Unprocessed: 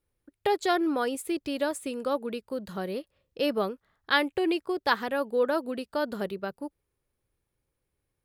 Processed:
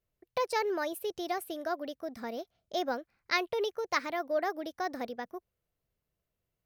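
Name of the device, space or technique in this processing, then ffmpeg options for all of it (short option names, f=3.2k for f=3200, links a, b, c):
nightcore: -af "asetrate=54684,aresample=44100,volume=-5dB"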